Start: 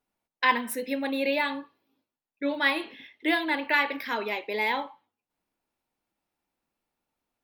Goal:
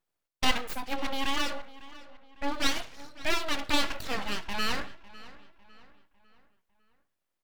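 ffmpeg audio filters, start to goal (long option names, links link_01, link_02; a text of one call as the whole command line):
ffmpeg -i in.wav -filter_complex "[0:a]aeval=exprs='abs(val(0))':channel_layout=same,asplit=2[link_01][link_02];[link_02]adelay=552,lowpass=frequency=4000:poles=1,volume=-18dB,asplit=2[link_03][link_04];[link_04]adelay=552,lowpass=frequency=4000:poles=1,volume=0.44,asplit=2[link_05][link_06];[link_06]adelay=552,lowpass=frequency=4000:poles=1,volume=0.44,asplit=2[link_07][link_08];[link_08]adelay=552,lowpass=frequency=4000:poles=1,volume=0.44[link_09];[link_01][link_03][link_05][link_07][link_09]amix=inputs=5:normalize=0" out.wav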